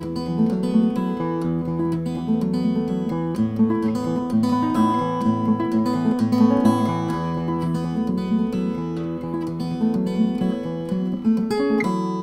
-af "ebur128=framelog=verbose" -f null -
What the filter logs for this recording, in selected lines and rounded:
Integrated loudness:
  I:         -21.9 LUFS
  Threshold: -31.9 LUFS
Loudness range:
  LRA:         3.8 LU
  Threshold: -41.9 LUFS
  LRA low:   -23.8 LUFS
  LRA high:  -20.0 LUFS